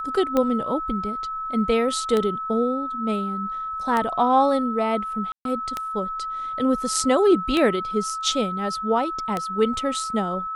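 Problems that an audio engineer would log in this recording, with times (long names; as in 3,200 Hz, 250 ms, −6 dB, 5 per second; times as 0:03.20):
scratch tick 33 1/3 rpm −10 dBFS
whistle 1,300 Hz −27 dBFS
0:05.32–0:05.45: drop-out 132 ms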